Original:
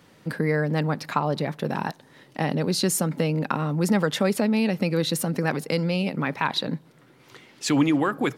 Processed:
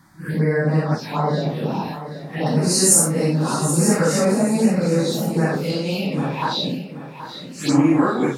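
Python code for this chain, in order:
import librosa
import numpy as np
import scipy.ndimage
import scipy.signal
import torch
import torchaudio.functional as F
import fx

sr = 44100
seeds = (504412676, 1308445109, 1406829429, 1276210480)

y = fx.phase_scramble(x, sr, seeds[0], window_ms=200)
y = fx.peak_eq(y, sr, hz=13000.0, db=12.0, octaves=2.2, at=(2.46, 4.25))
y = fx.env_phaser(y, sr, low_hz=470.0, high_hz=3400.0, full_db=-19.5)
y = fx.echo_feedback(y, sr, ms=777, feedback_pct=33, wet_db=-12.0)
y = y * librosa.db_to_amplitude(5.0)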